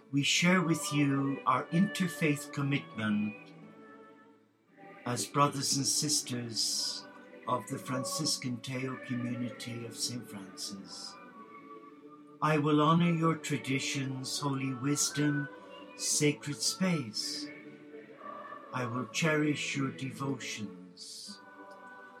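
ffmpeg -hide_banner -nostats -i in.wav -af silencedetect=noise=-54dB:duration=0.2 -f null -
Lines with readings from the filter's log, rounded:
silence_start: 4.41
silence_end: 4.75 | silence_duration: 0.34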